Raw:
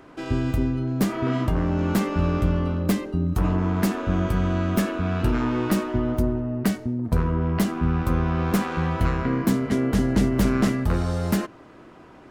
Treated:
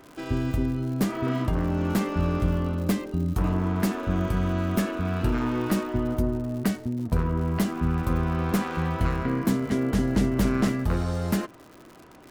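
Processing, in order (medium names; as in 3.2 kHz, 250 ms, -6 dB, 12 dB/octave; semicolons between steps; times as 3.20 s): crackle 150 per s -35 dBFS; trim -2.5 dB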